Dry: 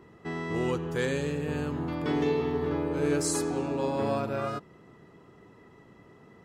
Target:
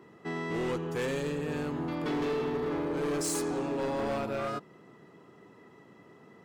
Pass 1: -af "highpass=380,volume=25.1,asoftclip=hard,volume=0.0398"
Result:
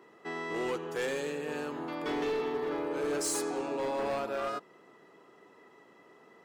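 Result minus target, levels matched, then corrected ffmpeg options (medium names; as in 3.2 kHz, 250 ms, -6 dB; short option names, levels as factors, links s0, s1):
125 Hz band -10.0 dB
-af "highpass=150,volume=25.1,asoftclip=hard,volume=0.0398"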